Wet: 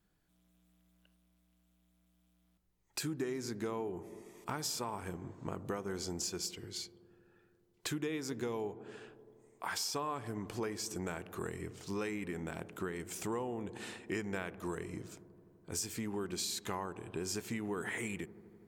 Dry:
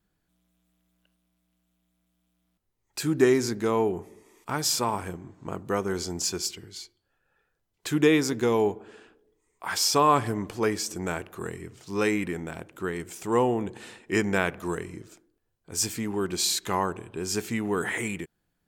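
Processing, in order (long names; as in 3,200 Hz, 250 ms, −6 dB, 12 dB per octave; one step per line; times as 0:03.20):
downward compressor 6 to 1, threshold −35 dBFS, peak gain reduction 18.5 dB
delay with a low-pass on its return 83 ms, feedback 84%, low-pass 690 Hz, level −17 dB
level −1 dB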